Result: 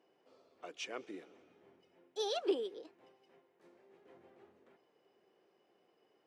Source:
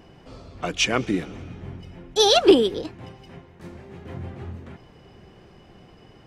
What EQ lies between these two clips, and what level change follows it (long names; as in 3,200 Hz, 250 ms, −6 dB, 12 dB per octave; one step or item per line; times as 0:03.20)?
resonant band-pass 410 Hz, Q 1.6
first difference
+6.5 dB